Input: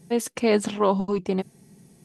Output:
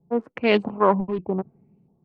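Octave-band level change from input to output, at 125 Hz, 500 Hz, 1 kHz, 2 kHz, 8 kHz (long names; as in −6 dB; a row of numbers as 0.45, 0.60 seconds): 0.0 dB, +1.0 dB, +4.0 dB, +5.0 dB, below −35 dB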